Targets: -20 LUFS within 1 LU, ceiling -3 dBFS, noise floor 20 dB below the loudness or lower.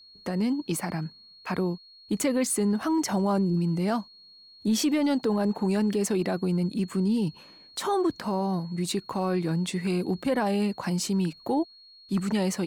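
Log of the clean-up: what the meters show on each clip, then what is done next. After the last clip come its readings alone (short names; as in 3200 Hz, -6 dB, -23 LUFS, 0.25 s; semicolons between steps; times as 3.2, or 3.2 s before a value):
steady tone 4300 Hz; tone level -50 dBFS; loudness -27.5 LUFS; peak -17.0 dBFS; loudness target -20.0 LUFS
-> notch 4300 Hz, Q 30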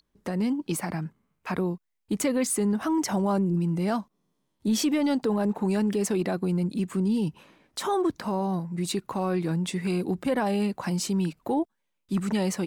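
steady tone none; loudness -27.5 LUFS; peak -17.0 dBFS; loudness target -20.0 LUFS
-> gain +7.5 dB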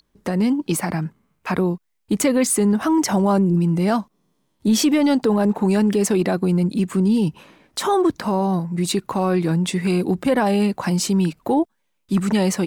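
loudness -20.0 LUFS; peak -9.5 dBFS; noise floor -70 dBFS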